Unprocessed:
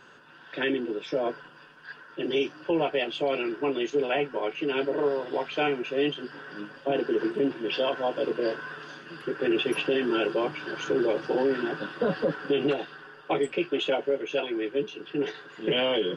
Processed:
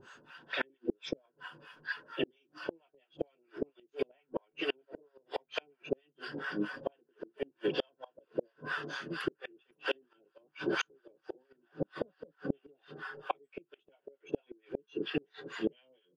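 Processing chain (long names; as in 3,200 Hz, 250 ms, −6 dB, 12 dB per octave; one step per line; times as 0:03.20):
two-band tremolo in antiphase 4.4 Hz, depth 100%, crossover 660 Hz
gate with flip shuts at −26 dBFS, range −39 dB
noise reduction from a noise print of the clip's start 6 dB
level +7 dB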